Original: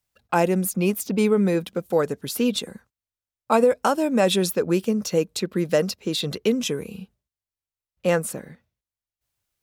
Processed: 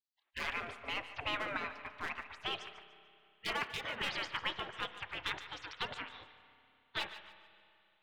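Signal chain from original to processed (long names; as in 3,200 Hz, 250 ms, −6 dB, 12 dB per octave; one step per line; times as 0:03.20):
gliding playback speed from 88% → 152%
low-pass filter 2,700 Hz 24 dB per octave
in parallel at −8 dB: hard clipping −15 dBFS, distortion −15 dB
on the sum: gate on every frequency bin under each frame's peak −30 dB weak
feedback echo with a high-pass in the loop 146 ms, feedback 32%, level −13.5 dB
spring reverb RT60 2.7 s, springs 30/56 ms, chirp 45 ms, DRR 12.5 dB
level +4 dB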